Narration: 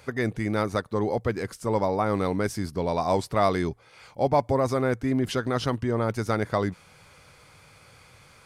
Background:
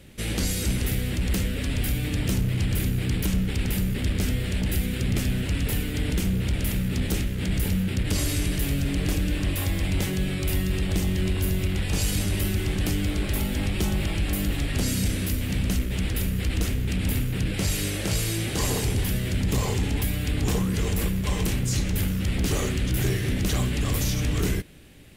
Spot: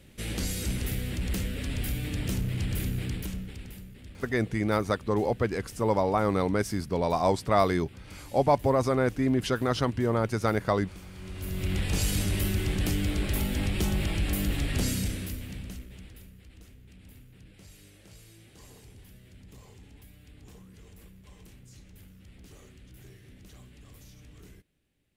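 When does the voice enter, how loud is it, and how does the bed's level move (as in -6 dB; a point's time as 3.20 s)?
4.15 s, -0.5 dB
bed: 3.00 s -5.5 dB
3.92 s -21.5 dB
11.12 s -21.5 dB
11.72 s -2.5 dB
14.85 s -2.5 dB
16.43 s -26.5 dB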